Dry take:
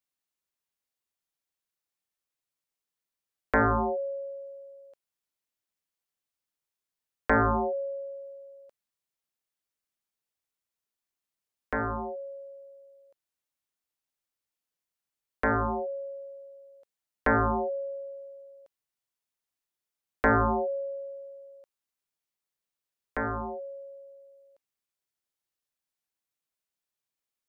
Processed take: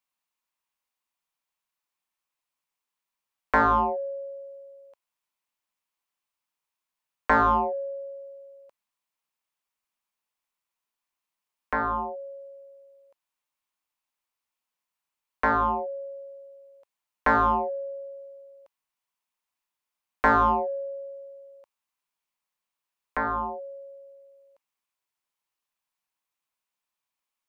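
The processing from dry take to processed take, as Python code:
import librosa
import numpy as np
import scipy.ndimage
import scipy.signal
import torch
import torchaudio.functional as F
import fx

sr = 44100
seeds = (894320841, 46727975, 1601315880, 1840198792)

p1 = fx.graphic_eq_15(x, sr, hz=(100, 400, 1000, 2500), db=(-9, -3, 10, 5))
p2 = 10.0 ** (-19.5 / 20.0) * np.tanh(p1 / 10.0 ** (-19.5 / 20.0))
p3 = p1 + F.gain(torch.from_numpy(p2), -9.0).numpy()
y = F.gain(torch.from_numpy(p3), -2.5).numpy()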